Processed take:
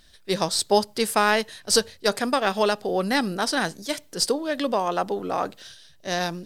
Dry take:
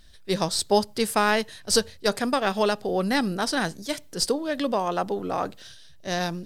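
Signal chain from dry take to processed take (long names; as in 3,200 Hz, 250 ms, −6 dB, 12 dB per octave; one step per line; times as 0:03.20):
low-shelf EQ 160 Hz −8.5 dB
level +2 dB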